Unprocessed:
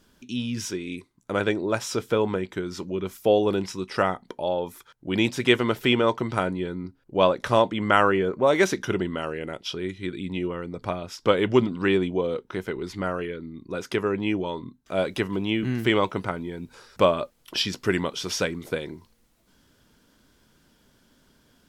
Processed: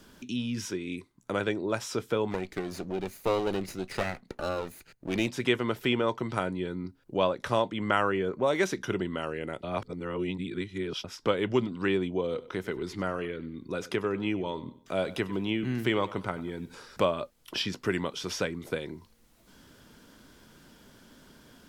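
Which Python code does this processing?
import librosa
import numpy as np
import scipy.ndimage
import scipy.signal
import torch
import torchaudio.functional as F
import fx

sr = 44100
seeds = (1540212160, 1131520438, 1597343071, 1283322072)

y = fx.lower_of_two(x, sr, delay_ms=0.46, at=(2.3, 5.26), fade=0.02)
y = fx.echo_feedback(y, sr, ms=96, feedback_pct=33, wet_db=-18.5, at=(12.3, 17.04), fade=0.02)
y = fx.edit(y, sr, fx.reverse_span(start_s=9.63, length_s=1.41), tone=tone)
y = fx.band_squash(y, sr, depth_pct=40)
y = F.gain(torch.from_numpy(y), -5.0).numpy()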